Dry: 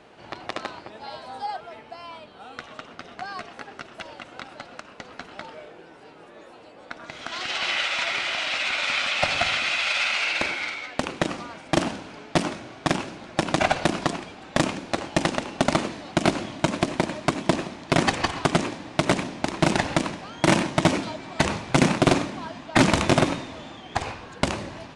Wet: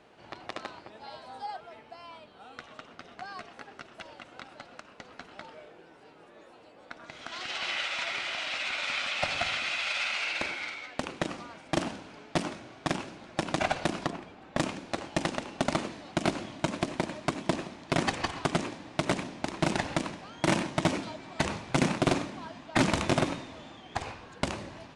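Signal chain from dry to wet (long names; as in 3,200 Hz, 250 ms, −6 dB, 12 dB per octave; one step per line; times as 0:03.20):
0:14.06–0:14.58: high-shelf EQ 3,300 Hz −11 dB
level −7 dB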